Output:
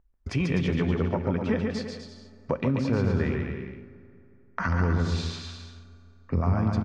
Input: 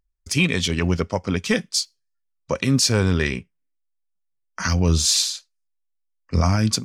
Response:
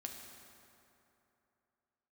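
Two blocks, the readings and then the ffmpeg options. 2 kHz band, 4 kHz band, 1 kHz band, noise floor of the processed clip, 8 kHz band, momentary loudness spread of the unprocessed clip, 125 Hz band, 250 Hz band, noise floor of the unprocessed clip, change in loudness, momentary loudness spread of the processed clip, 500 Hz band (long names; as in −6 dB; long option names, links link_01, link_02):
−8.5 dB, −17.5 dB, −3.5 dB, −56 dBFS, −26.0 dB, 10 LU, −4.0 dB, −3.5 dB, −74 dBFS, −6.5 dB, 16 LU, −3.5 dB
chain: -filter_complex "[0:a]lowpass=1400,acompressor=threshold=-39dB:ratio=2.5,aecho=1:1:140|252|341.6|413.3|470.6:0.631|0.398|0.251|0.158|0.1,asplit=2[link_01][link_02];[1:a]atrim=start_sample=2205[link_03];[link_02][link_03]afir=irnorm=-1:irlink=0,volume=-5dB[link_04];[link_01][link_04]amix=inputs=2:normalize=0,volume=6dB"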